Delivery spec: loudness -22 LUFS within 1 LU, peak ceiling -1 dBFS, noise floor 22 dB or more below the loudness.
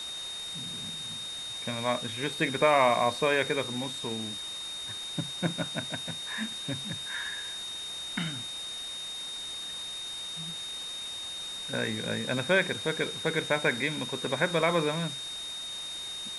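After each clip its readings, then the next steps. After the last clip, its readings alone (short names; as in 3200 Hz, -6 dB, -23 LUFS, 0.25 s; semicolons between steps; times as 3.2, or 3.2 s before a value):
steady tone 3700 Hz; tone level -36 dBFS; noise floor -38 dBFS; noise floor target -53 dBFS; loudness -30.5 LUFS; peak -10.0 dBFS; loudness target -22.0 LUFS
-> notch 3700 Hz, Q 30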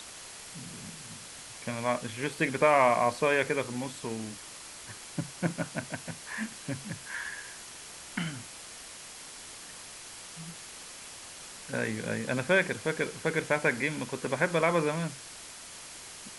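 steady tone none; noise floor -46 dBFS; noise floor target -53 dBFS
-> denoiser 7 dB, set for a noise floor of -46 dBFS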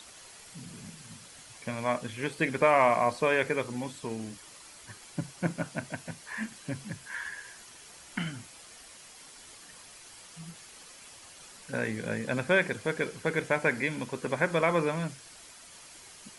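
noise floor -51 dBFS; noise floor target -53 dBFS
-> denoiser 6 dB, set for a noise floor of -51 dBFS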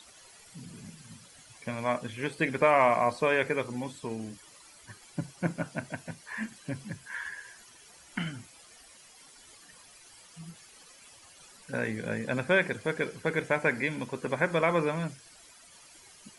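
noise floor -55 dBFS; loudness -30.5 LUFS; peak -10.5 dBFS; loudness target -22.0 LUFS
-> gain +8.5 dB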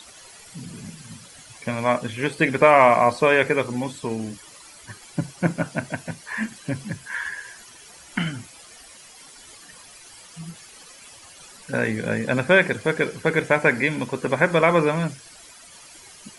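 loudness -22.0 LUFS; peak -2.0 dBFS; noise floor -47 dBFS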